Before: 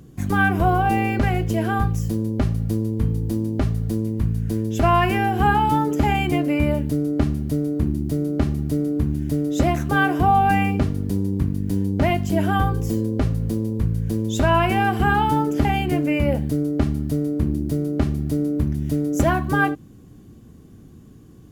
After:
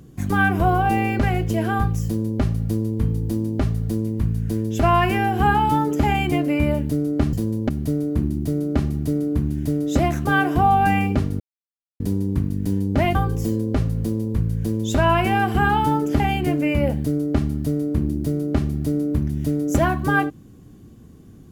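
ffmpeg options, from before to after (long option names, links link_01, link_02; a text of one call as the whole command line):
ffmpeg -i in.wav -filter_complex "[0:a]asplit=5[link_01][link_02][link_03][link_04][link_05];[link_01]atrim=end=7.332[link_06];[link_02]atrim=start=2.048:end=2.412[link_07];[link_03]atrim=start=7.328:end=11.04,asetpts=PTS-STARTPTS,afade=type=out:start_time=3.708:duration=0.004:curve=hsin,apad=pad_dur=0.6[link_08];[link_04]atrim=start=11.04:end=12.192,asetpts=PTS-STARTPTS,afade=type=in:duration=0.004:curve=hsin[link_09];[link_05]atrim=start=12.598[link_10];[link_06][link_07]acrossfade=duration=0.004:curve1=hsin:curve2=hsin[link_11];[link_08][link_09]concat=n=2:v=0:a=1[link_12];[link_11][link_12]acrossfade=duration=0.004:curve1=hsin:curve2=hsin[link_13];[link_13][link_10]acrossfade=duration=0.004:curve1=hsin:curve2=hsin" out.wav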